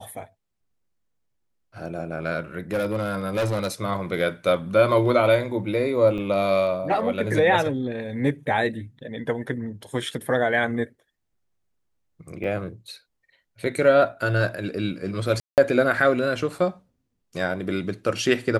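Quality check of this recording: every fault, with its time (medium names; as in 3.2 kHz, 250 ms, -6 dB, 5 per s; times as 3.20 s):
2.72–3.68 s: clipped -20 dBFS
6.18 s: dropout 4.4 ms
12.44 s: dropout 2.4 ms
15.40–15.58 s: dropout 178 ms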